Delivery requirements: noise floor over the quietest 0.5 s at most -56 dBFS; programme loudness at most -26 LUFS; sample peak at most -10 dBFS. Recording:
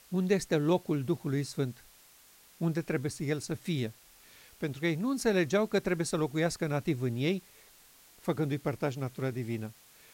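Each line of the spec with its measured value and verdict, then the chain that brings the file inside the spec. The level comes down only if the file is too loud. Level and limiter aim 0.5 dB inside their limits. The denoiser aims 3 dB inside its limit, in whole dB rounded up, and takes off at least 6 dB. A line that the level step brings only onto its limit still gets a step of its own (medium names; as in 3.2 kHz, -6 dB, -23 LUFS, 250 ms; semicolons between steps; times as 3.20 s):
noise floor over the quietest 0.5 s -59 dBFS: pass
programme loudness -32.0 LUFS: pass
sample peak -14.5 dBFS: pass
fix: none needed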